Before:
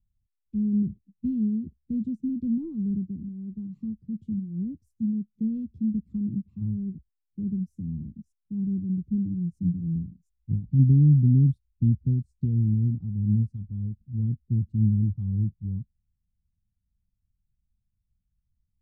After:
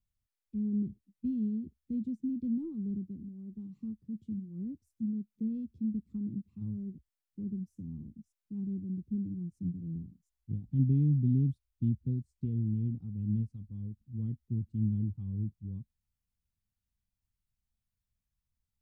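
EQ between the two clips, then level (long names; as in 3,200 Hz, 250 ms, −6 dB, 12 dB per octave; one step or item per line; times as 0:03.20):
parametric band 170 Hz −3.5 dB 0.51 octaves
low-shelf EQ 220 Hz −11 dB
0.0 dB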